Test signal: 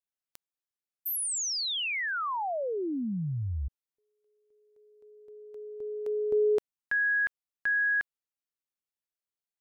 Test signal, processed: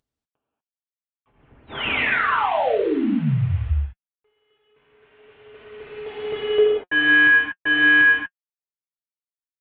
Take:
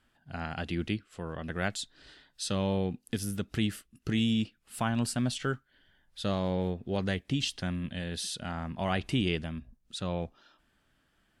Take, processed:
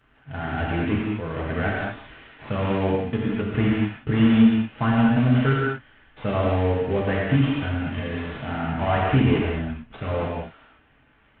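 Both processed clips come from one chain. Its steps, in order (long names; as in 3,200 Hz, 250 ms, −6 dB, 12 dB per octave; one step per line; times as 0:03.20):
variable-slope delta modulation 16 kbit/s
notch comb filter 180 Hz
reverb whose tail is shaped and stops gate 260 ms flat, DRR −4 dB
level +7 dB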